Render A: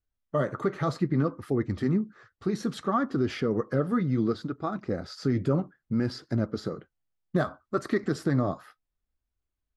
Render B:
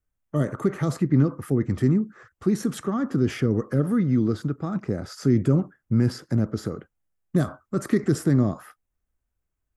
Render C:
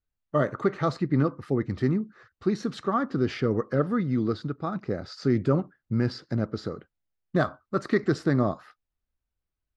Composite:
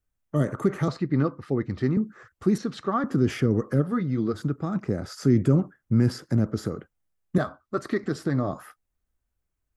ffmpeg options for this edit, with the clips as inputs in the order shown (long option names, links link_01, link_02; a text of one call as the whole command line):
ffmpeg -i take0.wav -i take1.wav -i take2.wav -filter_complex "[2:a]asplit=2[link_01][link_02];[0:a]asplit=2[link_03][link_04];[1:a]asplit=5[link_05][link_06][link_07][link_08][link_09];[link_05]atrim=end=0.882[link_10];[link_01]atrim=start=0.878:end=1.972[link_11];[link_06]atrim=start=1.968:end=2.582[link_12];[link_02]atrim=start=2.578:end=3.042[link_13];[link_07]atrim=start=3.038:end=3.87[link_14];[link_03]atrim=start=3.81:end=4.38[link_15];[link_08]atrim=start=4.32:end=7.382[link_16];[link_04]atrim=start=7.378:end=8.532[link_17];[link_09]atrim=start=8.528[link_18];[link_10][link_11]acrossfade=duration=0.004:curve1=hsin:curve2=hsin[link_19];[link_19][link_12]acrossfade=duration=0.004:curve1=hsin:curve2=hsin[link_20];[link_20][link_13]acrossfade=duration=0.004:curve1=hsin:curve2=hsin[link_21];[link_21][link_14]acrossfade=duration=0.004:curve1=hsin:curve2=hsin[link_22];[link_22][link_15]acrossfade=duration=0.06:curve1=tri:curve2=tri[link_23];[link_23][link_16]acrossfade=duration=0.06:curve1=tri:curve2=tri[link_24];[link_24][link_17]acrossfade=duration=0.004:curve1=hsin:curve2=hsin[link_25];[link_25][link_18]acrossfade=duration=0.004:curve1=hsin:curve2=hsin" out.wav